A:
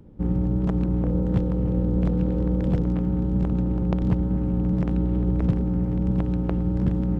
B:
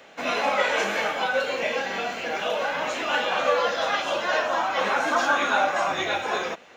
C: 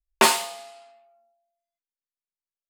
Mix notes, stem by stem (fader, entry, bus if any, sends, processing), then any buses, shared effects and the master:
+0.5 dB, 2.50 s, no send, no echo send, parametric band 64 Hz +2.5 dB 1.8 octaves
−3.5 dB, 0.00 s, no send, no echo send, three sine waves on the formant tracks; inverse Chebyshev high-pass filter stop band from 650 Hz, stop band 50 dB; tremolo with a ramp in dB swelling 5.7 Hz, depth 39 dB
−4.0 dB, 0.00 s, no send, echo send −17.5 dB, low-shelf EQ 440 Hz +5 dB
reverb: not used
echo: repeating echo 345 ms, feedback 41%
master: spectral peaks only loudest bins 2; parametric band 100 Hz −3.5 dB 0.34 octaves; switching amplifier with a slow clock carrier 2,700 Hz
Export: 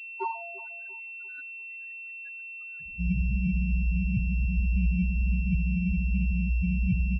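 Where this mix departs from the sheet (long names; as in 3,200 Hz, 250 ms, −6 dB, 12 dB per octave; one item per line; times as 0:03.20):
stem A: entry 2.50 s → 2.80 s
stem C: missing low-shelf EQ 440 Hz +5 dB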